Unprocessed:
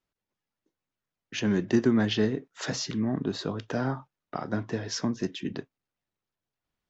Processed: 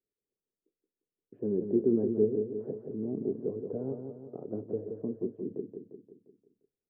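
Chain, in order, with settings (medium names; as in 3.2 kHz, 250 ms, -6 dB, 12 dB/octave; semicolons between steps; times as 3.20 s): four-pole ladder low-pass 480 Hz, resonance 65%; bass shelf 160 Hz -5.5 dB; feedback delay 175 ms, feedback 52%, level -6.5 dB; trim +2.5 dB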